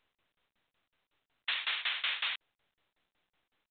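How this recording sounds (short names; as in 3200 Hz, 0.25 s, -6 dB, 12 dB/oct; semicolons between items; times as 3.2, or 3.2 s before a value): tremolo saw down 5.4 Hz, depth 95%; µ-law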